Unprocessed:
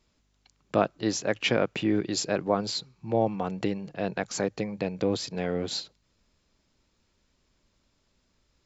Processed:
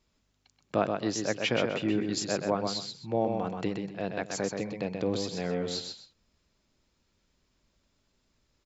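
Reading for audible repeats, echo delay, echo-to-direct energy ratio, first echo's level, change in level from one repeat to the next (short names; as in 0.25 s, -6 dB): 2, 0.128 s, -4.5 dB, -5.0 dB, -12.0 dB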